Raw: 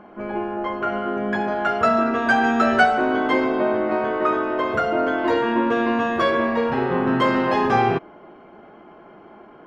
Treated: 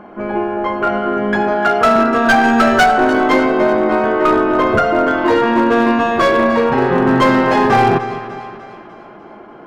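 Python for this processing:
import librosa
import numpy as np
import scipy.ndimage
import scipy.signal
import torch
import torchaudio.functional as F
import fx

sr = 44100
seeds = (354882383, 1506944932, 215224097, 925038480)

p1 = fx.tracing_dist(x, sr, depth_ms=0.059)
p2 = fx.highpass(p1, sr, hz=150.0, slope=12, at=(1.54, 1.96))
p3 = fx.low_shelf(p2, sr, hz=290.0, db=7.0, at=(4.27, 4.79))
p4 = p3 + fx.echo_split(p3, sr, split_hz=900.0, low_ms=205, high_ms=298, feedback_pct=52, wet_db=-12.5, dry=0)
p5 = np.clip(p4, -10.0 ** (-13.5 / 20.0), 10.0 ** (-13.5 / 20.0))
p6 = fx.peak_eq(p5, sr, hz=3100.0, db=-2.0, octaves=0.77)
y = p6 * 10.0 ** (7.5 / 20.0)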